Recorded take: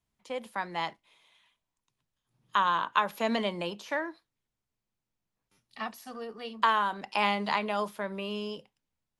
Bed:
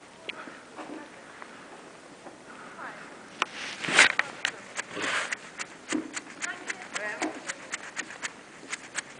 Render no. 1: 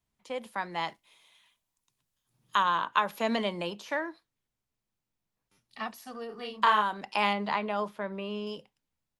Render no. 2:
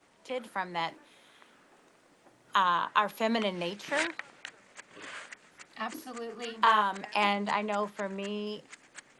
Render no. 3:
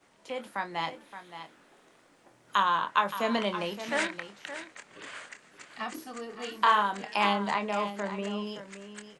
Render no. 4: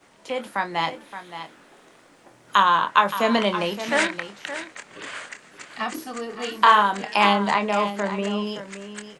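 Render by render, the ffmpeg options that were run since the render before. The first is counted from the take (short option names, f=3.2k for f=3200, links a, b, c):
-filter_complex "[0:a]asettb=1/sr,asplit=3[a][b][c];[a]atrim=end=0.884[d];[b]atrim=start=0.88:end=2.63,asetpts=PTS-STARTPTS,afade=t=in:d=0.004:c=qsin,afade=t=out:st=1.746:d=0.004:c=qsin,aemphasis=mode=production:type=cd[e];[c]atrim=start=2.626[f];[d][e]acrossfade=d=0.004:c1=hsin:c2=qsin[g];[g][f]acrossfade=d=0.004:c1=qsin:c2=hsin,asplit=3[h][i][j];[h]afade=t=out:st=6.29:d=0.02[k];[i]asplit=2[l][m];[m]adelay=33,volume=-3.5dB[n];[l][n]amix=inputs=2:normalize=0,afade=t=in:st=6.29:d=0.02,afade=t=out:st=6.81:d=0.02[o];[j]afade=t=in:st=6.81:d=0.02[p];[k][o][p]amix=inputs=3:normalize=0,asettb=1/sr,asplit=3[q][r][s];[q]atrim=end=7.334[t];[r]atrim=start=7.33:end=8.47,asetpts=PTS-STARTPTS,afade=t=in:d=0.004:c=qsin,afade=t=out:st=1.136:d=0.004:c=qsin,lowpass=f=2.4k:p=1[u];[s]atrim=start=8.466[v];[t][u]acrossfade=d=0.004:c1=hsin:c2=qsin[w];[w][v]acrossfade=d=0.004:c1=qsin:c2=hsin"
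-filter_complex "[1:a]volume=-14.5dB[a];[0:a][a]amix=inputs=2:normalize=0"
-filter_complex "[0:a]asplit=2[a][b];[b]adelay=25,volume=-9dB[c];[a][c]amix=inputs=2:normalize=0,aecho=1:1:570:0.266"
-af "volume=8dB"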